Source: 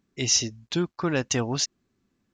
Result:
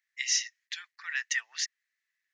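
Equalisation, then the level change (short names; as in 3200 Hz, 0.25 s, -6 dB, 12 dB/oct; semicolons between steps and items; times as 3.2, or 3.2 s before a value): ladder high-pass 1800 Hz, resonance 85%; tilt +2 dB/oct; notch 7500 Hz, Q 20; +1.5 dB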